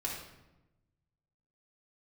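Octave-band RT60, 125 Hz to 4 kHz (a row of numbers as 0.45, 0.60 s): 1.7, 1.3, 1.1, 0.95, 0.80, 0.65 s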